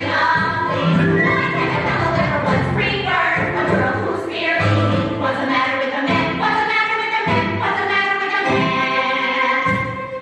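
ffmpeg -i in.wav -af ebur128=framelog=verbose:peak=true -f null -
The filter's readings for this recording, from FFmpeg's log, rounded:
Integrated loudness:
  I:         -17.4 LUFS
  Threshold: -27.4 LUFS
Loudness range:
  LRA:         0.9 LU
  Threshold: -37.5 LUFS
  LRA low:   -17.9 LUFS
  LRA high:  -17.0 LUFS
True peak:
  Peak:       -5.9 dBFS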